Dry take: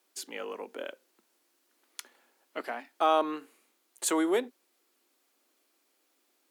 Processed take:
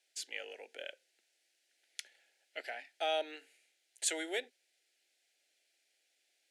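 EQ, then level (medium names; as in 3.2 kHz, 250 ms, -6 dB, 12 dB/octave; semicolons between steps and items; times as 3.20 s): Chebyshev band-pass 1–9.6 kHz, order 2; Butterworth band-stop 1.1 kHz, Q 0.9; treble shelf 6.5 kHz -10.5 dB; +3.5 dB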